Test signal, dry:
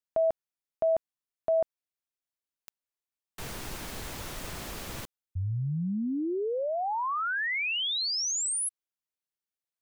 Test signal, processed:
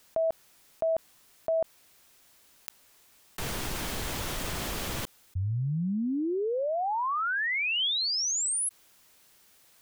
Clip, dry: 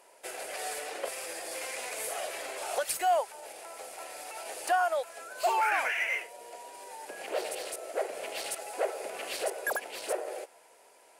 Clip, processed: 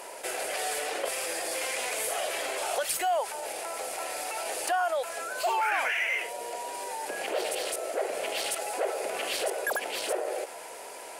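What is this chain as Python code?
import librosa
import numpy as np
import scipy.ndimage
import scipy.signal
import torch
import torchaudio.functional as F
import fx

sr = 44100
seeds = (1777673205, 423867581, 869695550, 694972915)

y = fx.dynamic_eq(x, sr, hz=3200.0, q=5.1, threshold_db=-52.0, ratio=4.0, max_db=4)
y = fx.env_flatten(y, sr, amount_pct=50)
y = y * librosa.db_to_amplitude(-2.0)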